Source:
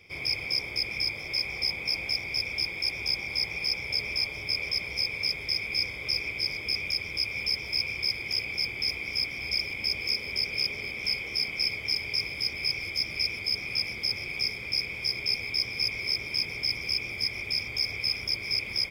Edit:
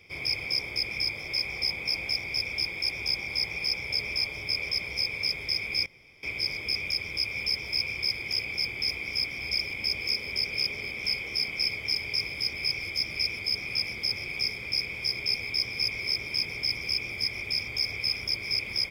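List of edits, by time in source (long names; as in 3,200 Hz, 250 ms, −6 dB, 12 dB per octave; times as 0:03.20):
0:05.86–0:06.23: fill with room tone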